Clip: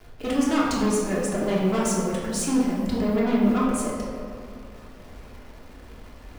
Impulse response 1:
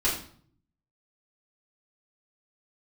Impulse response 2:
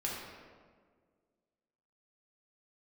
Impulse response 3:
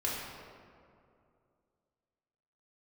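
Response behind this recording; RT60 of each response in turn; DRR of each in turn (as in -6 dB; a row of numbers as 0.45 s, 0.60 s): 3; 0.55 s, 1.7 s, 2.5 s; -8.5 dB, -4.5 dB, -6.5 dB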